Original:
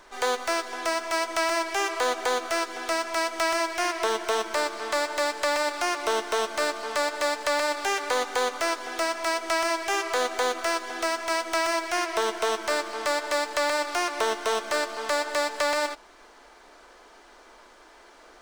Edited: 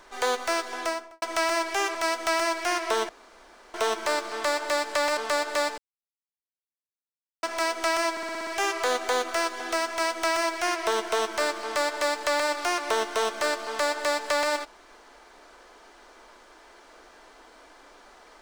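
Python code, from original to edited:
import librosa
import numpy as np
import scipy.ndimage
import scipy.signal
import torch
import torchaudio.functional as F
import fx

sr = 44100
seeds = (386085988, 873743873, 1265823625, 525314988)

y = fx.studio_fade_out(x, sr, start_s=0.8, length_s=0.42)
y = fx.edit(y, sr, fx.cut(start_s=1.95, length_s=1.13),
    fx.insert_room_tone(at_s=4.22, length_s=0.65),
    fx.cut(start_s=5.65, length_s=1.18),
    fx.silence(start_s=7.44, length_s=1.65),
    fx.stutter(start_s=9.77, slice_s=0.06, count=7), tone=tone)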